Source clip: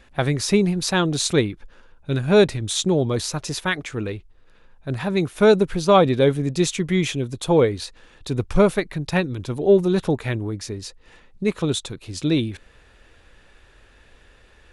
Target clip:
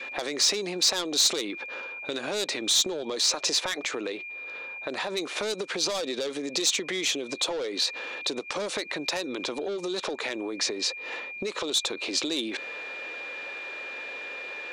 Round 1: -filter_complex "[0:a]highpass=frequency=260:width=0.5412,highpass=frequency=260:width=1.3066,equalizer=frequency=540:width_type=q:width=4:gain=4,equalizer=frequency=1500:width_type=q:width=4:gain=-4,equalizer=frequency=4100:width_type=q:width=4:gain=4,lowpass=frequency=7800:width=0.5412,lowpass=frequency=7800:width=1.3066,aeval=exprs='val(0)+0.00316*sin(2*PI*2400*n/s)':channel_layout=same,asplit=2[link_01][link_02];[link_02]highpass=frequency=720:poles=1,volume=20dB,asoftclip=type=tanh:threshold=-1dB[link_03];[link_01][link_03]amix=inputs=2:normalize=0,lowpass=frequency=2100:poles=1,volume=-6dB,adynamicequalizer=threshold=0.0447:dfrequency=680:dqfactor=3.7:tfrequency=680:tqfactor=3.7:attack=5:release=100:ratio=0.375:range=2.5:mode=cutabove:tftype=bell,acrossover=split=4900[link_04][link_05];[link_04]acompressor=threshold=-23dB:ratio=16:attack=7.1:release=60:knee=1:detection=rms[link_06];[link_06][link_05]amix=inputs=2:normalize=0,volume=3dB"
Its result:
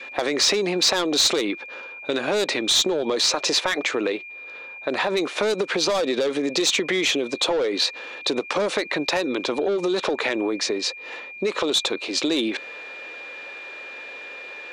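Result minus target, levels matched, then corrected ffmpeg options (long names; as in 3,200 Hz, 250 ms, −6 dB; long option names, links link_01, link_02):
downward compressor: peak gain reduction −9 dB
-filter_complex "[0:a]highpass=frequency=260:width=0.5412,highpass=frequency=260:width=1.3066,equalizer=frequency=540:width_type=q:width=4:gain=4,equalizer=frequency=1500:width_type=q:width=4:gain=-4,equalizer=frequency=4100:width_type=q:width=4:gain=4,lowpass=frequency=7800:width=0.5412,lowpass=frequency=7800:width=1.3066,aeval=exprs='val(0)+0.00316*sin(2*PI*2400*n/s)':channel_layout=same,asplit=2[link_01][link_02];[link_02]highpass=frequency=720:poles=1,volume=20dB,asoftclip=type=tanh:threshold=-1dB[link_03];[link_01][link_03]amix=inputs=2:normalize=0,lowpass=frequency=2100:poles=1,volume=-6dB,adynamicequalizer=threshold=0.0447:dfrequency=680:dqfactor=3.7:tfrequency=680:tqfactor=3.7:attack=5:release=100:ratio=0.375:range=2.5:mode=cutabove:tftype=bell,acrossover=split=4900[link_04][link_05];[link_04]acompressor=threshold=-32.5dB:ratio=16:attack=7.1:release=60:knee=1:detection=rms[link_06];[link_06][link_05]amix=inputs=2:normalize=0,volume=3dB"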